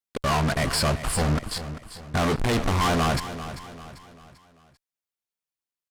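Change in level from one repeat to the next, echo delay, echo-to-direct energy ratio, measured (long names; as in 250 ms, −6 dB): −7.5 dB, 393 ms, −11.5 dB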